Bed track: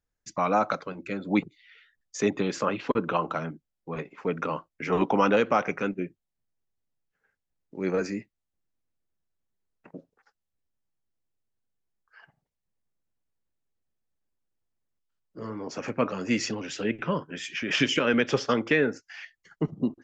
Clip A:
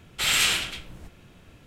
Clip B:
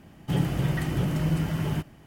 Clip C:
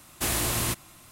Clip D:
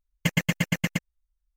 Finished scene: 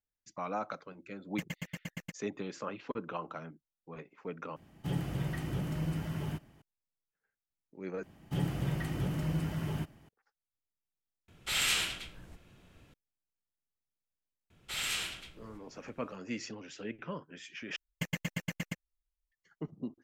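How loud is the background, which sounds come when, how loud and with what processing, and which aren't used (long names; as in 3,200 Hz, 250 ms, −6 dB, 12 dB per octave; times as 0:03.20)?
bed track −12.5 dB
0:01.13: mix in D −16.5 dB
0:04.56: overwrite with B −9 dB
0:08.03: overwrite with B −7.5 dB
0:11.28: mix in A −8 dB
0:14.50: mix in A −13 dB
0:17.76: overwrite with D −11.5 dB
not used: C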